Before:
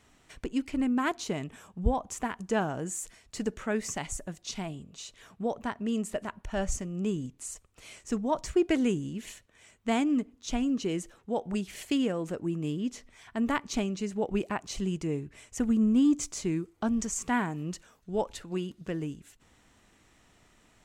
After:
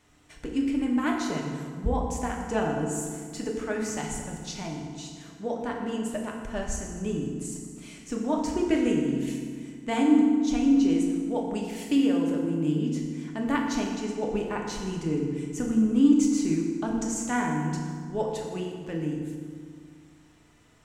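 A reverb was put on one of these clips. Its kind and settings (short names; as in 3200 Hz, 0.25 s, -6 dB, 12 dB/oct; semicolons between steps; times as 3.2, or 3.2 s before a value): FDN reverb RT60 1.9 s, low-frequency decay 1.35×, high-frequency decay 0.65×, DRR -1 dB; gain -2 dB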